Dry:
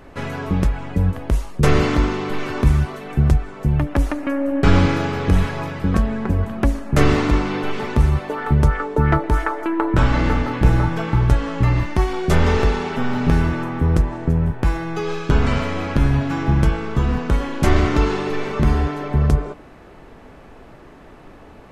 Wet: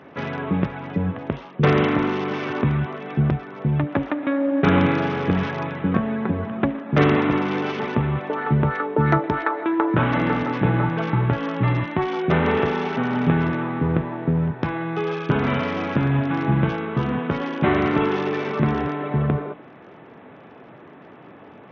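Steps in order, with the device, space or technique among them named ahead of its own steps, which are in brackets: Bluetooth headset (high-pass 120 Hz 24 dB/octave; resampled via 8 kHz; SBC 64 kbps 48 kHz)

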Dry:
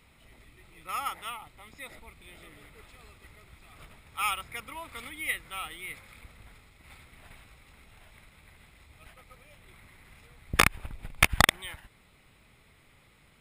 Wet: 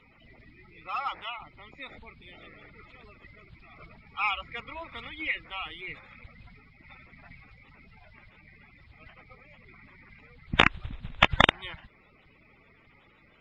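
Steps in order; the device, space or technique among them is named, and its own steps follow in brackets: clip after many re-uploads (low-pass 4.2 kHz 24 dB/octave; coarse spectral quantiser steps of 30 dB); trim +2 dB

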